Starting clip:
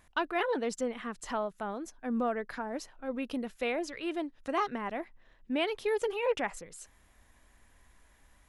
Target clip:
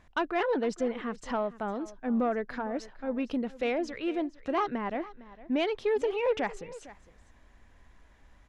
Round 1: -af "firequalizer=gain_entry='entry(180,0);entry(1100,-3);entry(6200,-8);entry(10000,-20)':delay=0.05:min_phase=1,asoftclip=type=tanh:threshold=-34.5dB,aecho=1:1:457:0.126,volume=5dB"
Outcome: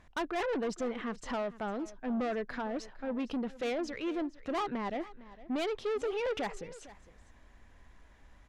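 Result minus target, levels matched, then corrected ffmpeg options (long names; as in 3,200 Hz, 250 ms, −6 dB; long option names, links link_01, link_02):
soft clipping: distortion +13 dB
-af "firequalizer=gain_entry='entry(180,0);entry(1100,-3);entry(6200,-8);entry(10000,-20)':delay=0.05:min_phase=1,asoftclip=type=tanh:threshold=-23.5dB,aecho=1:1:457:0.126,volume=5dB"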